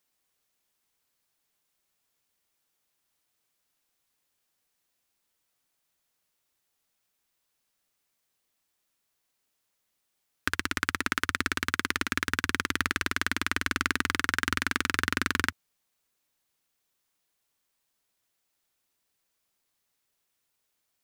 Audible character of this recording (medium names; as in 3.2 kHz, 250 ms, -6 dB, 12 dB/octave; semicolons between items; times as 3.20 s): noise floor -79 dBFS; spectral tilt -3.5 dB/octave